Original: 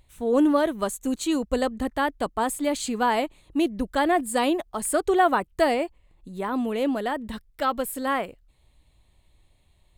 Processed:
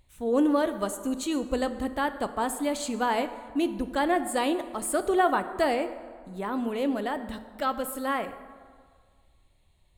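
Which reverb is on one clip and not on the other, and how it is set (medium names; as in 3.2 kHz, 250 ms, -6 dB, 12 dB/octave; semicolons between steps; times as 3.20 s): plate-style reverb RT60 1.8 s, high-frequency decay 0.55×, DRR 10 dB; trim -3.5 dB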